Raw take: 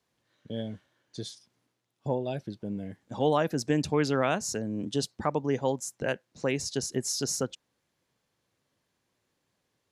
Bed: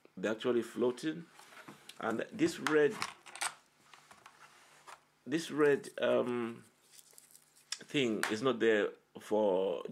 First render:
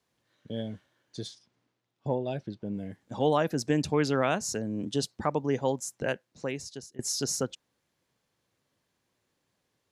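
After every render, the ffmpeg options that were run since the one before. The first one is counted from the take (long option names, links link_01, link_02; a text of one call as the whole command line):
ffmpeg -i in.wav -filter_complex "[0:a]asettb=1/sr,asplit=3[link_01][link_02][link_03];[link_01]atrim=end=1.274[link_04];[link_02]atrim=start=1.27:end=2.74,asetpts=PTS-STARTPTS,afade=type=in:duration=0.004:curve=qsin,afade=type=out:start_time=1.466:duration=0.004:curve=qsin,adynamicsmooth=sensitivity=4:basefreq=6800[link_05];[link_03]atrim=start=2.736[link_06];[link_04][link_05]acrossfade=duration=0.004:curve1=hsin:curve2=qsin[link_07];[link_07][link_06]acrossfade=duration=0.004:curve1=qsin:curve2=hsin,asplit=2[link_08][link_09];[link_08]atrim=end=6.99,asetpts=PTS-STARTPTS,afade=type=out:start_time=6.06:duration=0.93:silence=0.0749894[link_10];[link_09]atrim=start=6.99,asetpts=PTS-STARTPTS,afade=type=in:duration=0.004:curve=hsin:silence=0.0749894[link_11];[link_10][link_11]concat=n=2:v=0:a=1" out.wav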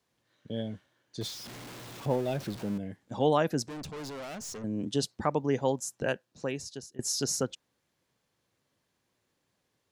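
ffmpeg -i in.wav -filter_complex "[0:a]asettb=1/sr,asplit=3[link_01][link_02][link_03];[link_01]atrim=end=1.214[link_04];[link_02]atrim=start=1.21:end=2.78,asetpts=PTS-STARTPTS,afade=type=in:duration=0.004:curve=qsin,afade=type=out:start_time=1.566:duration=0.004:curve=qsin,aeval=exprs='val(0)+0.5*0.0119*sgn(val(0))':channel_layout=same[link_05];[link_03]atrim=start=2.776[link_06];[link_04][link_05]acrossfade=duration=0.004:curve1=hsin:curve2=qsin[link_07];[link_07][link_06]acrossfade=duration=0.004:curve1=qsin:curve2=hsin,asettb=1/sr,asplit=3[link_08][link_09][link_10];[link_08]atrim=end=3.654[link_11];[link_09]atrim=start=3.65:end=4.64,asetpts=PTS-STARTPTS,afade=type=in:duration=0.004:curve=qsin,afade=type=out:start_time=0.986:duration=0.004:curve=qsin,aeval=exprs='(tanh(79.4*val(0)+0.25)-tanh(0.25))/79.4':channel_layout=same[link_12];[link_10]atrim=start=4.636[link_13];[link_11][link_12]acrossfade=duration=0.004:curve1=hsin:curve2=qsin[link_14];[link_14][link_13]acrossfade=duration=0.004:curve1=qsin:curve2=hsin,asettb=1/sr,asplit=3[link_15][link_16][link_17];[link_15]atrim=end=5.694[link_18];[link_16]atrim=start=5.69:end=7.14,asetpts=PTS-STARTPTS,afade=type=in:duration=0.004:curve=qsin,afade=type=out:start_time=1.446:duration=0.004:curve=qsin,bandreject=frequency=2100:width=9.5[link_19];[link_17]atrim=start=7.136[link_20];[link_18][link_19]acrossfade=duration=0.004:curve1=hsin:curve2=qsin[link_21];[link_21][link_20]acrossfade=duration=0.004:curve1=qsin:curve2=hsin" out.wav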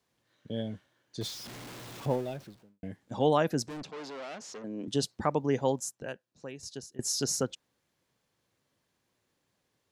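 ffmpeg -i in.wav -filter_complex "[0:a]asettb=1/sr,asplit=3[link_01][link_02][link_03];[link_01]atrim=end=3.834[link_04];[link_02]atrim=start=3.83:end=4.88,asetpts=PTS-STARTPTS,afade=type=in:duration=0.004:curve=qsin,afade=type=out:start_time=1.046:duration=0.004:curve=qsin,highpass=290,lowpass=5200[link_05];[link_03]atrim=start=4.876[link_06];[link_04][link_05]acrossfade=duration=0.004:curve1=hsin:curve2=qsin[link_07];[link_07][link_06]acrossfade=duration=0.004:curve1=qsin:curve2=hsin,asplit=4[link_08][link_09][link_10][link_11];[link_08]atrim=end=2.83,asetpts=PTS-STARTPTS,afade=type=out:start_time=2.09:duration=0.74:curve=qua[link_12];[link_09]atrim=start=2.83:end=5.912,asetpts=PTS-STARTPTS,afade=type=in:duration=0.004:curve=hsin[link_13];[link_10]atrim=start=5.908:end=6.632,asetpts=PTS-STARTPTS,volume=-9dB[link_14];[link_11]atrim=start=6.628[link_15];[link_12][link_13]concat=n=2:v=0:a=1[link_16];[link_16][link_14]acrossfade=duration=0.004:curve1=hsin:curve2=hsin[link_17];[link_17][link_15]acrossfade=duration=0.004:curve1=hsin:curve2=hsin" out.wav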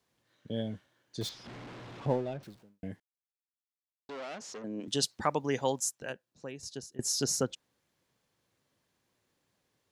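ffmpeg -i in.wav -filter_complex "[0:a]asettb=1/sr,asplit=3[link_01][link_02][link_03];[link_01]atrim=end=1.294[link_04];[link_02]atrim=start=1.29:end=2.43,asetpts=PTS-STARTPTS,afade=type=in:duration=0.004:curve=qsin,afade=type=out:start_time=1.136:duration=0.004:curve=qsin,adynamicsmooth=sensitivity=6:basefreq=2800[link_05];[link_03]atrim=start=2.426[link_06];[link_04][link_05]acrossfade=duration=0.004:curve1=hsin:curve2=qsin[link_07];[link_07][link_06]acrossfade=duration=0.004:curve1=qsin:curve2=hsin,asettb=1/sr,asplit=3[link_08][link_09][link_10];[link_08]atrim=end=4.804[link_11];[link_09]atrim=start=4.8:end=6.1,asetpts=PTS-STARTPTS,afade=type=in:duration=0.004:curve=qsin,afade=type=out:start_time=1.296:duration=0.004:curve=qsin,tiltshelf=frequency=880:gain=-5[link_12];[link_10]atrim=start=6.096[link_13];[link_11][link_12]acrossfade=duration=0.004:curve1=hsin:curve2=qsin[link_14];[link_14][link_13]acrossfade=duration=0.004:curve1=qsin:curve2=hsin,asplit=3[link_15][link_16][link_17];[link_15]atrim=end=3,asetpts=PTS-STARTPTS,afade=type=out:start_time=2.996:duration=0.004:curve=hsin[link_18];[link_16]atrim=start=3:end=4.09,asetpts=PTS-STARTPTS,volume=0[link_19];[link_17]atrim=start=4.09,asetpts=PTS-STARTPTS,afade=type=in:duration=0.004:curve=hsin[link_20];[link_18][link_19][link_20]concat=n=3:v=0:a=1" out.wav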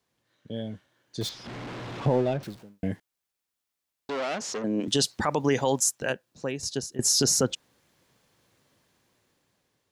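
ffmpeg -i in.wav -af "alimiter=limit=-24dB:level=0:latency=1:release=33,dynaudnorm=framelen=430:gausssize=7:maxgain=11dB" out.wav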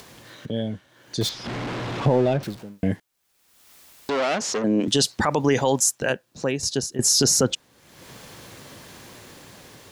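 ffmpeg -i in.wav -filter_complex "[0:a]asplit=2[link_01][link_02];[link_02]alimiter=limit=-20.5dB:level=0:latency=1:release=18,volume=2dB[link_03];[link_01][link_03]amix=inputs=2:normalize=0,acompressor=mode=upward:threshold=-28dB:ratio=2.5" out.wav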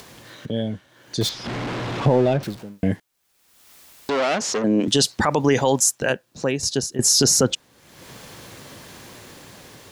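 ffmpeg -i in.wav -af "volume=2dB" out.wav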